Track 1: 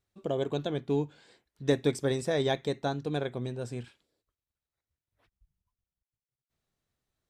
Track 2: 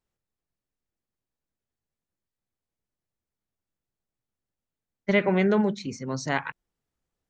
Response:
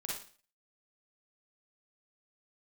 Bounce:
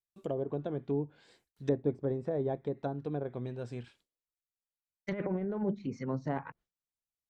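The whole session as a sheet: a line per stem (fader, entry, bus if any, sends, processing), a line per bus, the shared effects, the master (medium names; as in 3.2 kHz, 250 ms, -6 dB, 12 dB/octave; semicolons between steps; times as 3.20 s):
-3.5 dB, 0.00 s, no send, none
-6.0 dB, 0.00 s, no send, de-esser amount 95%; treble shelf 2.3 kHz +10 dB; compressor with a negative ratio -24 dBFS, ratio -0.5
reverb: none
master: gate with hold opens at -57 dBFS; low-pass that closes with the level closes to 700 Hz, closed at -29.5 dBFS; treble shelf 8.2 kHz +10 dB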